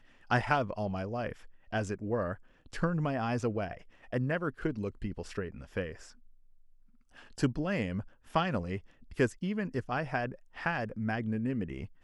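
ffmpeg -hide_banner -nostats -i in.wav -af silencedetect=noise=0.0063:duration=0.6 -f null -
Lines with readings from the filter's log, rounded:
silence_start: 6.09
silence_end: 7.16 | silence_duration: 1.08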